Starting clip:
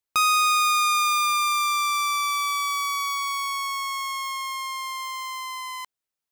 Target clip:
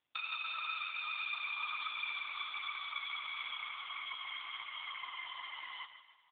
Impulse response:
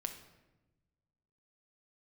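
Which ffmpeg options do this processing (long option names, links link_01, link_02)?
-filter_complex "[0:a]afftfilt=real='hypot(re,im)*cos(2*PI*random(0))':imag='hypot(re,im)*sin(2*PI*random(1))':win_size=512:overlap=0.75,acompressor=threshold=-34dB:ratio=4,aderivative,asplit=2[link_01][link_02];[link_02]aecho=0:1:149|298|447|596|745:0.282|0.138|0.0677|0.0332|0.0162[link_03];[link_01][link_03]amix=inputs=2:normalize=0,volume=14.5dB" -ar 8000 -c:a libopencore_amrnb -b:a 5150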